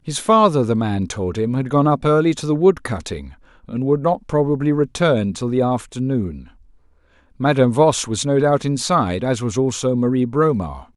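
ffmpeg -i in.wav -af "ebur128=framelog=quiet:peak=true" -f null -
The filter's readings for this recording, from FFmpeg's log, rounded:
Integrated loudness:
  I:         -18.2 LUFS
  Threshold: -28.8 LUFS
Loudness range:
  LRA:         2.8 LU
  Threshold: -39.2 LUFS
  LRA low:   -20.4 LUFS
  LRA high:  -17.7 LUFS
True peak:
  Peak:       -2.2 dBFS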